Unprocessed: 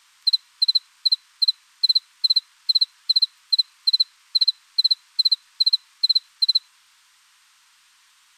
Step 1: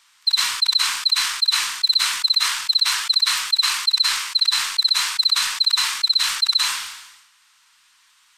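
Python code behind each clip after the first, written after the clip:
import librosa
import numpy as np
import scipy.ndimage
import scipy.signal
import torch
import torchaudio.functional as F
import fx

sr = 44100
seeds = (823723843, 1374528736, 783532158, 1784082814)

y = fx.sustainer(x, sr, db_per_s=57.0)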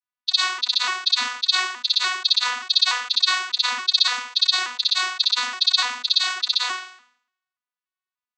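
y = fx.vocoder_arp(x, sr, chord='bare fifth', root=59, every_ms=291)
y = fx.band_widen(y, sr, depth_pct=100)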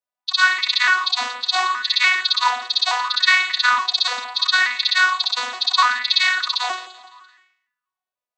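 y = fx.echo_feedback(x, sr, ms=170, feedback_pct=49, wet_db=-17.0)
y = fx.bell_lfo(y, sr, hz=0.73, low_hz=570.0, high_hz=2200.0, db=18)
y = y * librosa.db_to_amplitude(-2.0)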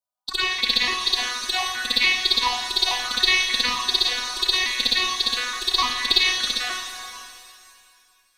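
y = fx.diode_clip(x, sr, knee_db=-7.0)
y = fx.env_phaser(y, sr, low_hz=350.0, high_hz=1500.0, full_db=-16.0)
y = fx.rev_shimmer(y, sr, seeds[0], rt60_s=2.3, semitones=7, shimmer_db=-8, drr_db=5.5)
y = y * librosa.db_to_amplitude(1.5)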